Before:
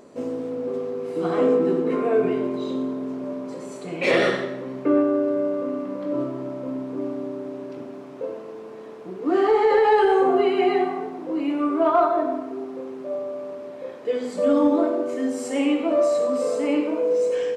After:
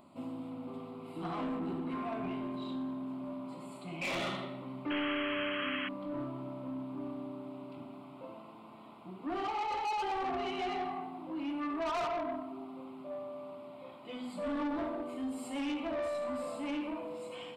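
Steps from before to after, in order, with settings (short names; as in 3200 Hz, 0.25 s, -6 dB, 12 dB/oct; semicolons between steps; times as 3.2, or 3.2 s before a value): fixed phaser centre 1700 Hz, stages 6; soft clip -27 dBFS, distortion -9 dB; painted sound noise, 4.9–5.89, 1000–3300 Hz -34 dBFS; gain -4.5 dB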